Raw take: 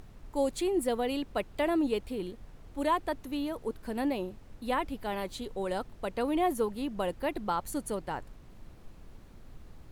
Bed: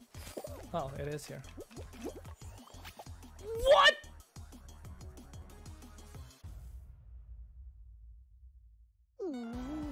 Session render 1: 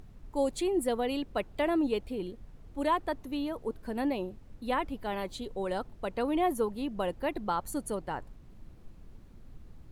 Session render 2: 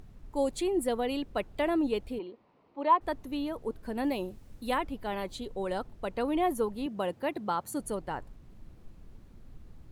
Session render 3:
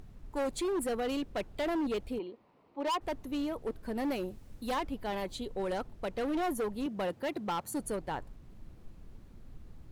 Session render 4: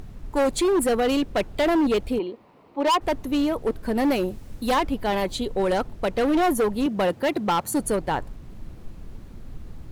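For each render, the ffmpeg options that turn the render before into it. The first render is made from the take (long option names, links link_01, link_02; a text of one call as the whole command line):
ffmpeg -i in.wav -af "afftdn=noise_reduction=6:noise_floor=-52" out.wav
ffmpeg -i in.wav -filter_complex "[0:a]asplit=3[link_01][link_02][link_03];[link_01]afade=type=out:start_time=2.18:duration=0.02[link_04];[link_02]highpass=340,equalizer=frequency=990:width_type=q:width=4:gain=7,equalizer=frequency=1600:width_type=q:width=4:gain=-8,equalizer=frequency=3400:width_type=q:width=4:gain=-7,lowpass=frequency=4000:width=0.5412,lowpass=frequency=4000:width=1.3066,afade=type=in:start_time=2.18:duration=0.02,afade=type=out:start_time=3:duration=0.02[link_05];[link_03]afade=type=in:start_time=3:duration=0.02[link_06];[link_04][link_05][link_06]amix=inputs=3:normalize=0,asettb=1/sr,asplit=3[link_07][link_08][link_09];[link_07]atrim=end=4.044[link_10];[link_08]atrim=start=4.04:end=4.78,asetpts=PTS-STARTPTS,afade=type=in:duration=0.004:curve=qsin,afade=type=out:start_time=0.736:duration=0.004:curve=qsin,highshelf=frequency=4700:gain=10[link_11];[link_09]atrim=start=4.776[link_12];[link_10][link_11]acrossfade=duration=0.004:curve1=hsin:curve2=qsin[link_13];[link_13][link_12]acrossfade=duration=0.004:curve1=qsin:curve2=hsin,asettb=1/sr,asplit=3[link_14][link_15][link_16];[link_14]atrim=end=6.864[link_17];[link_15]atrim=start=6.86:end=7.8,asetpts=PTS-STARTPTS,afade=type=in:duration=0.004:curve=qsin,afade=type=out:start_time=0.936:duration=0.004:curve=qsin,highpass=frequency=100:width=0.5412,highpass=frequency=100:width=1.3066[link_18];[link_16]atrim=start=7.796[link_19];[link_17][link_18]acrossfade=duration=0.004:curve1=hsin:curve2=qsin[link_20];[link_20][link_19]acrossfade=duration=0.004:curve1=qsin:curve2=hsin" out.wav
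ffmpeg -i in.wav -af "asoftclip=type=hard:threshold=-29dB" out.wav
ffmpeg -i in.wav -af "volume=11.5dB" out.wav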